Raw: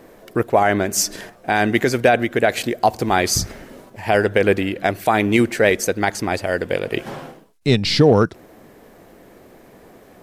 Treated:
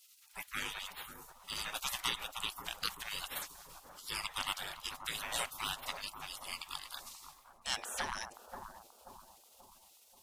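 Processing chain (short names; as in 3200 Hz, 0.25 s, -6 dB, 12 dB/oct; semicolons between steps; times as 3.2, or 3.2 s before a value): spectral gate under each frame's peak -30 dB weak; analogue delay 0.533 s, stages 4096, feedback 47%, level -6.5 dB; gain +1 dB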